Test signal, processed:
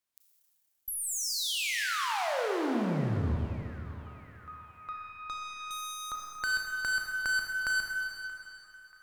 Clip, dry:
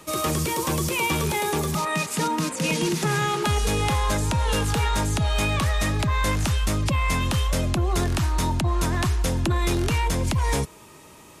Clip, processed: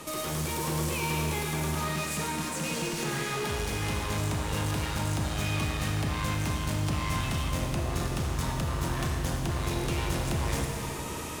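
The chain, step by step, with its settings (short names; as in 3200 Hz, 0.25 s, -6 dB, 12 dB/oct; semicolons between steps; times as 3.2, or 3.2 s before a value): tube stage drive 31 dB, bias 0.25; compressor 2.5:1, threshold -40 dBFS; narrowing echo 0.631 s, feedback 65%, band-pass 1500 Hz, level -19 dB; vocal rider within 4 dB 2 s; Schroeder reverb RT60 2.9 s, combs from 26 ms, DRR 0 dB; gain +5 dB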